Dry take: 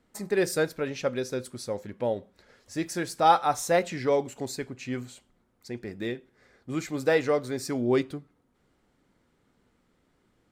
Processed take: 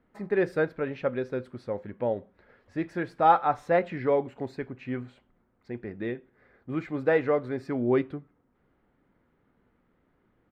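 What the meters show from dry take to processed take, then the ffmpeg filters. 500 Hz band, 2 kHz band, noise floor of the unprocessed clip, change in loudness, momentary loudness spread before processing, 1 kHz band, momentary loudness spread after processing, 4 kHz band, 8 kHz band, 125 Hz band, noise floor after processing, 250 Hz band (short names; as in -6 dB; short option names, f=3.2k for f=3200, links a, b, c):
0.0 dB, -1.0 dB, -70 dBFS, -0.5 dB, 13 LU, 0.0 dB, 14 LU, under -10 dB, under -25 dB, 0.0 dB, -70 dBFS, 0.0 dB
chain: -af "firequalizer=gain_entry='entry(1700,0);entry(6200,-27);entry(11000,-29)':delay=0.05:min_phase=1"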